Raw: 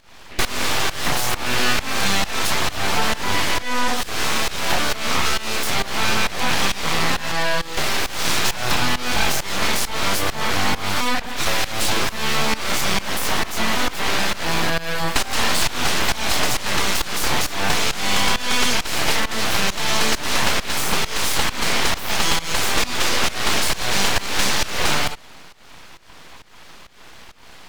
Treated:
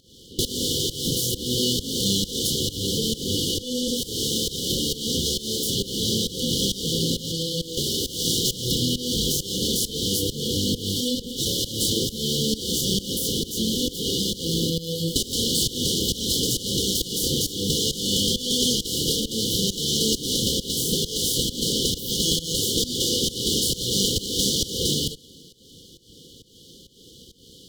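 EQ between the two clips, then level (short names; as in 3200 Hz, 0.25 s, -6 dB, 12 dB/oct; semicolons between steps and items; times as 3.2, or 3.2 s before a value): HPF 180 Hz 6 dB/oct; brick-wall FIR band-stop 540–2900 Hz; low shelf 240 Hz +9 dB; 0.0 dB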